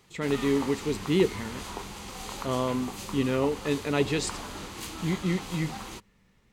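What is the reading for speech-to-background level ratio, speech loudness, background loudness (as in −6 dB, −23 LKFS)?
9.5 dB, −29.0 LKFS, −38.5 LKFS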